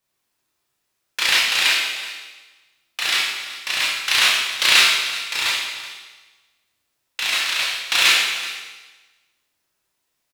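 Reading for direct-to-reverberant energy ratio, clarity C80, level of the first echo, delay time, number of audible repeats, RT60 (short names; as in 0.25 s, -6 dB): -4.5 dB, 3.0 dB, -15.5 dB, 0.378 s, 1, 1.4 s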